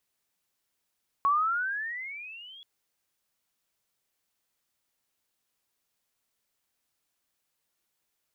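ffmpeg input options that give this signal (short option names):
-f lavfi -i "aevalsrc='pow(10,(-20-26*t/1.38)/20)*sin(2*PI*1100*1.38/(19.5*log(2)/12)*(exp(19.5*log(2)/12*t/1.38)-1))':d=1.38:s=44100"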